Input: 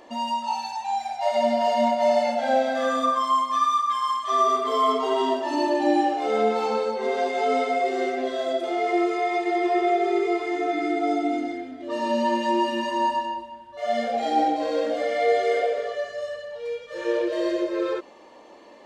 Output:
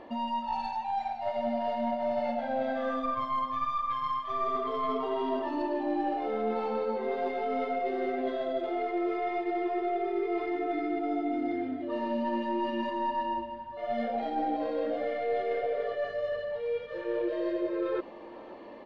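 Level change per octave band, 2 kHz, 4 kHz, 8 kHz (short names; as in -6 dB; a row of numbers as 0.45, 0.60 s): -9.5 dB, -13.0 dB, under -25 dB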